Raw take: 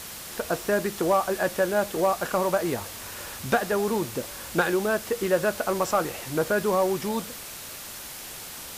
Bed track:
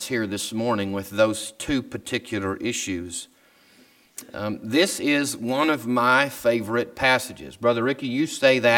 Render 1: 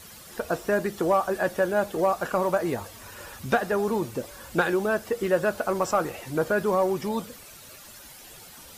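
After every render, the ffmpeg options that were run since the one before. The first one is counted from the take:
-af "afftdn=nr=11:nf=-40"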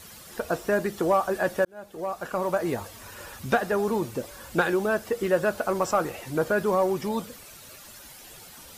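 -filter_complex "[0:a]asplit=2[a][b];[a]atrim=end=1.65,asetpts=PTS-STARTPTS,afade=t=out:st=1.646:d=0.004:c=hsin[c];[b]atrim=start=1.65,asetpts=PTS-STARTPTS,afade=t=in:d=1.06[d];[c][d]concat=n=2:v=0:a=1"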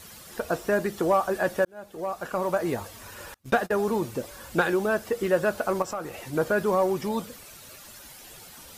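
-filter_complex "[0:a]asettb=1/sr,asplit=3[a][b][c];[a]atrim=end=3.344[d];[b]atrim=start=3.34:end=3.89,asetpts=PTS-STARTPTS,afade=t=in:d=0.004:c=qsin,afade=t=out:st=0.546:d=0.004:c=qsin,agate=range=-32dB:threshold=-33dB:ratio=16:release=100:detection=peak[e];[c]atrim=start=3.886[f];[d][e]acrossfade=d=0.004:c1=hsin:c2=qsin[g];[g][f]acrossfade=d=0.004:c1=qsin:c2=hsin,asettb=1/sr,asplit=3[h][i][j];[h]atrim=end=5.824[k];[i]atrim=start=5.82:end=6.33,asetpts=PTS-STARTPTS,afade=t=in:d=0.004:c=qsin,afade=t=out:st=0.506:d=0.004:c=qsin,acompressor=threshold=-35dB:ratio=2:attack=3.2:release=140:knee=1:detection=peak[l];[j]atrim=start=6.326[m];[k][l]acrossfade=d=0.004:c1=hsin:c2=qsin[n];[n][m]acrossfade=d=0.004:c1=qsin:c2=hsin"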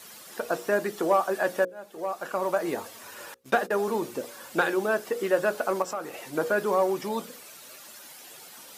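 -af "highpass=250,bandreject=f=60:t=h:w=6,bandreject=f=120:t=h:w=6,bandreject=f=180:t=h:w=6,bandreject=f=240:t=h:w=6,bandreject=f=300:t=h:w=6,bandreject=f=360:t=h:w=6,bandreject=f=420:t=h:w=6,bandreject=f=480:t=h:w=6,bandreject=f=540:t=h:w=6"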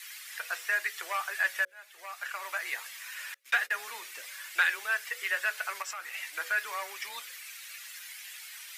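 -af "highpass=f=2k:t=q:w=2.8,afreqshift=14"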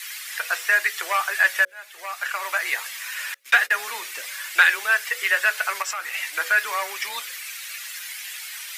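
-af "volume=10dB"

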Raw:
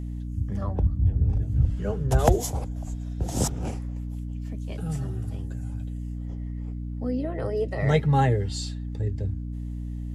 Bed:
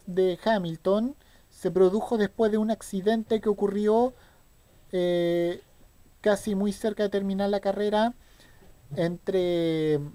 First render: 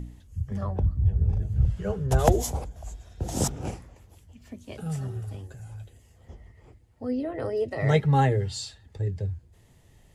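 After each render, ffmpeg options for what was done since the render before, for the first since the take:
-af "bandreject=f=60:t=h:w=4,bandreject=f=120:t=h:w=4,bandreject=f=180:t=h:w=4,bandreject=f=240:t=h:w=4,bandreject=f=300:t=h:w=4"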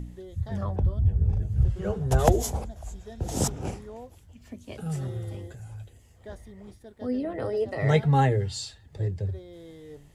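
-filter_complex "[1:a]volume=-20.5dB[a];[0:a][a]amix=inputs=2:normalize=0"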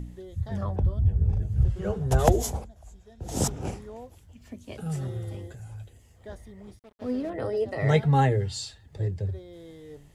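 -filter_complex "[0:a]asettb=1/sr,asplit=3[a][b][c];[a]atrim=end=6.794[d];[b]atrim=start=6.79:end=7.3,asetpts=PTS-STARTPTS,afade=t=in:d=0.004:c=qsin,afade=t=out:st=0.506:d=0.004:c=qsin,aeval=exprs='sgn(val(0))*max(abs(val(0))-0.00422,0)':c=same[e];[c]atrim=start=7.296[f];[d][e]acrossfade=d=0.004:c1=hsin:c2=qsin[g];[g][f]acrossfade=d=0.004:c1=qsin:c2=hsin,asplit=3[h][i][j];[h]atrim=end=2.68,asetpts=PTS-STARTPTS,afade=t=out:st=2.51:d=0.17:silence=0.334965[k];[i]atrim=start=2.68:end=3.2,asetpts=PTS-STARTPTS,volume=-9.5dB[l];[j]atrim=start=3.2,asetpts=PTS-STARTPTS,afade=t=in:d=0.17:silence=0.334965[m];[k][l][m]concat=n=3:v=0:a=1"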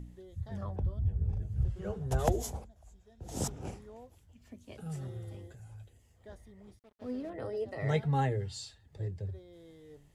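-af "volume=-8.5dB"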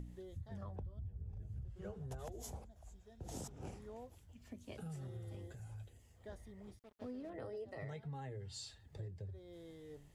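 -af "alimiter=level_in=1.5dB:limit=-24dB:level=0:latency=1:release=293,volume=-1.5dB,acompressor=threshold=-44dB:ratio=6"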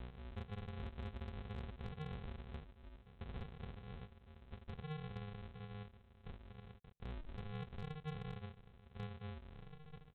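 -af "aresample=8000,acrusher=samples=26:mix=1:aa=0.000001,aresample=44100,asoftclip=type=hard:threshold=-39dB"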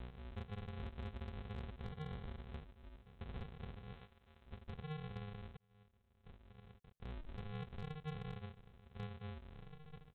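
-filter_complex "[0:a]asettb=1/sr,asplit=3[a][b][c];[a]atrim=end=1.824[d];[b]atrim=start=1.82:end=2.44,asetpts=PTS-STARTPTS,afade=t=in:d=0.004:c=qsin,afade=t=out:st=0.616:d=0.004:c=qsin,bandreject=f=2.6k:w=12[e];[c]atrim=start=2.436[f];[d][e]acrossfade=d=0.004:c1=hsin:c2=qsin[g];[g][f]acrossfade=d=0.004:c1=qsin:c2=hsin,asettb=1/sr,asplit=3[h][i][j];[h]atrim=end=3.934[k];[i]atrim=start=3.93:end=4.46,asetpts=PTS-STARTPTS,afade=t=in:d=0.004:c=qsin,afade=t=out:st=0.526:d=0.004:c=qsin,lowshelf=f=480:g=-8.5[l];[j]atrim=start=4.456[m];[k][l]acrossfade=d=0.004:c1=hsin:c2=qsin[n];[n][m]acrossfade=d=0.004:c1=qsin:c2=hsin,asplit=2[o][p];[o]atrim=end=5.57,asetpts=PTS-STARTPTS,afade=t=out:st=5.566:d=0.004:c=hsin[q];[p]atrim=start=5.57,asetpts=PTS-STARTPTS,afade=t=in:d=1.73[r];[q][r]concat=n=2:v=0:a=1"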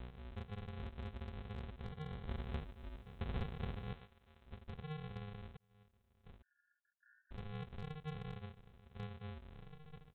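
-filter_complex "[0:a]asettb=1/sr,asplit=3[a][b][c];[a]atrim=end=6.424[d];[b]atrim=start=6.42:end=7.31,asetpts=PTS-STARTPTS,afade=t=in:d=0.004:c=qsin,afade=t=out:st=0.886:d=0.004:c=qsin,asuperpass=centerf=1600:order=20:qfactor=4[e];[c]atrim=start=7.306[f];[d][e]acrossfade=d=0.004:c1=hsin:c2=qsin[g];[g][f]acrossfade=d=0.004:c1=qsin:c2=hsin,asplit=3[h][i][j];[h]atrim=end=2.292[k];[i]atrim=start=2.288:end=3.932,asetpts=PTS-STARTPTS,volume=7dB[l];[j]atrim=start=3.928[m];[k][l]acrossfade=d=0.004:c1=hsin:c2=hsin[n];[n][m]acrossfade=d=0.004:c1=hsin:c2=hsin"

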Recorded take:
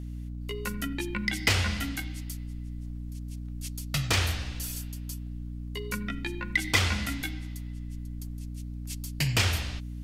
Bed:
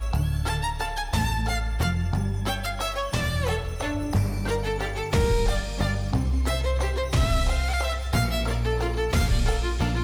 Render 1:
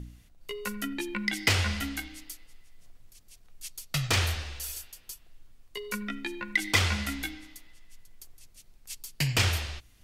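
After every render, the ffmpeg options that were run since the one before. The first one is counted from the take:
-af "bandreject=f=60:t=h:w=4,bandreject=f=120:t=h:w=4,bandreject=f=180:t=h:w=4,bandreject=f=240:t=h:w=4,bandreject=f=300:t=h:w=4"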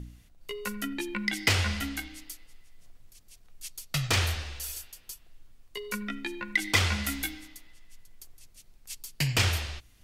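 -filter_complex "[0:a]asettb=1/sr,asplit=3[a][b][c];[a]atrim=end=7.044[d];[b]atrim=start=7.04:end=7.48,asetpts=PTS-STARTPTS,afade=t=in:d=0.004:c=qsin,afade=t=out:st=0.436:d=0.004:c=qsin,highshelf=f=7.8k:g=10.5[e];[c]atrim=start=7.476[f];[d][e]acrossfade=d=0.004:c1=hsin:c2=qsin[g];[g][f]acrossfade=d=0.004:c1=qsin:c2=hsin"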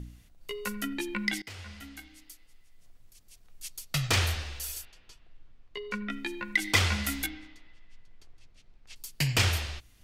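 -filter_complex "[0:a]asettb=1/sr,asplit=3[a][b][c];[a]atrim=end=4.854[d];[b]atrim=start=4.85:end=6.1,asetpts=PTS-STARTPTS,afade=t=in:d=0.004:c=qsin,afade=t=out:st=1.246:d=0.004:c=qsin,lowpass=3.4k[e];[c]atrim=start=6.096[f];[d][e]acrossfade=d=0.004:c1=hsin:c2=qsin[g];[g][f]acrossfade=d=0.004:c1=qsin:c2=hsin,asettb=1/sr,asplit=3[h][i][j];[h]atrim=end=7.264[k];[i]atrim=start=7.26:end=8.96,asetpts=PTS-STARTPTS,afade=t=in:d=0.004:c=qsin,afade=t=out:st=1.696:d=0.004:c=qsin,lowpass=3.4k[l];[j]atrim=start=8.956[m];[k][l]acrossfade=d=0.004:c1=hsin:c2=qsin[n];[n][m]acrossfade=d=0.004:c1=qsin:c2=hsin,asplit=2[o][p];[o]atrim=end=1.42,asetpts=PTS-STARTPTS,afade=t=out:st=1.416:d=0.004:c=hsin:silence=0.0630957[q];[p]atrim=start=1.42,asetpts=PTS-STARTPTS,afade=t=in:d=2.26:silence=0.0630957[r];[q][r]concat=n=2:v=0:a=1"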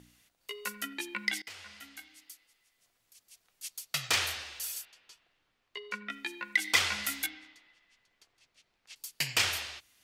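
-af "highpass=f=920:p=1"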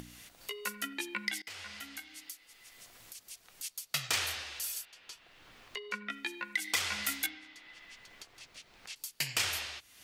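-filter_complex "[0:a]acrossover=split=6700[a][b];[a]alimiter=limit=-19.5dB:level=0:latency=1:release=273[c];[c][b]amix=inputs=2:normalize=0,acompressor=mode=upward:threshold=-38dB:ratio=2.5"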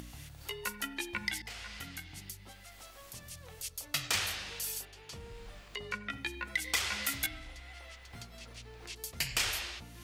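-filter_complex "[1:a]volume=-26.5dB[a];[0:a][a]amix=inputs=2:normalize=0"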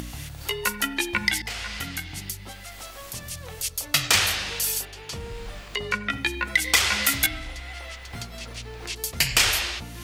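-af "volume=12dB"

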